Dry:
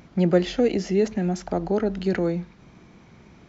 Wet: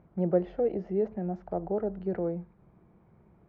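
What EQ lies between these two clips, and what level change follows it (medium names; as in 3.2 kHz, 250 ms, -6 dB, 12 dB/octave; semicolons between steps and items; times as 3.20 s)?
low-pass 1 kHz 12 dB/octave; dynamic bell 610 Hz, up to +5 dB, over -33 dBFS, Q 1.2; peaking EQ 260 Hz -12 dB 0.22 oct; -8.5 dB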